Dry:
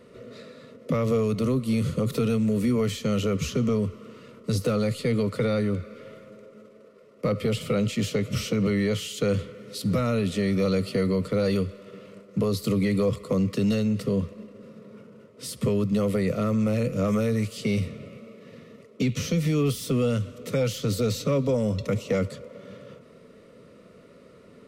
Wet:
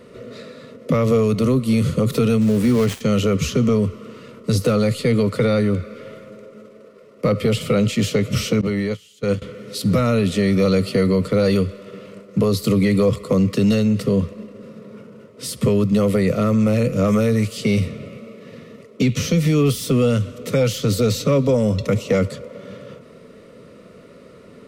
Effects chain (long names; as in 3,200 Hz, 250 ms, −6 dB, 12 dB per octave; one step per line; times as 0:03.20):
0:02.41–0:03.01: gap after every zero crossing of 0.13 ms
0:08.61–0:09.42: noise gate −22 dBFS, range −22 dB
level +7 dB